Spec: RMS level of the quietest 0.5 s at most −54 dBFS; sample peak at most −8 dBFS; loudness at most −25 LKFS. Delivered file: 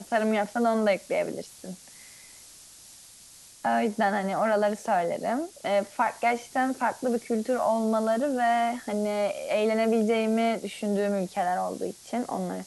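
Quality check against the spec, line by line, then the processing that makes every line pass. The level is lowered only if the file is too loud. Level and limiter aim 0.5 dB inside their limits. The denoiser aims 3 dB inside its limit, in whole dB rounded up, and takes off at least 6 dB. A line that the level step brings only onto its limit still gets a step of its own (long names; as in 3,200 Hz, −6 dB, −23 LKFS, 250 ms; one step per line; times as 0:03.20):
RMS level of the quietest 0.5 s −51 dBFS: out of spec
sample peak −13.0 dBFS: in spec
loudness −27.0 LKFS: in spec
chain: broadband denoise 6 dB, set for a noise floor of −51 dBFS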